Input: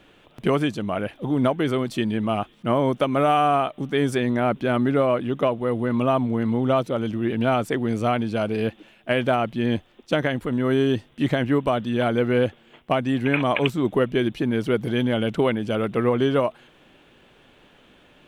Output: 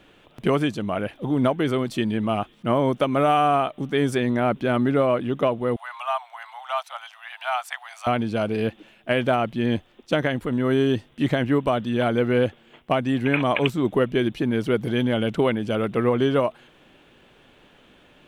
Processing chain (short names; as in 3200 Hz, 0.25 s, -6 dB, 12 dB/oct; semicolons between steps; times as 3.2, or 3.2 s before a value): 5.76–8.07 steep high-pass 710 Hz 72 dB/oct